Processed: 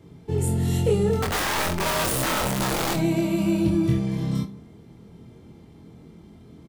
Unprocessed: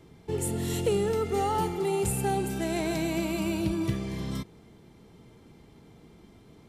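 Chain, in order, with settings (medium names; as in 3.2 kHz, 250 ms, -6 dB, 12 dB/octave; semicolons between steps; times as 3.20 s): high-pass 64 Hz 12 dB/octave; bass shelf 360 Hz +9.5 dB; 1.22–2.94 s: integer overflow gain 20 dB; doubling 24 ms -2.5 dB; reverberation RT60 0.45 s, pre-delay 4 ms, DRR 10.5 dB; trim -2 dB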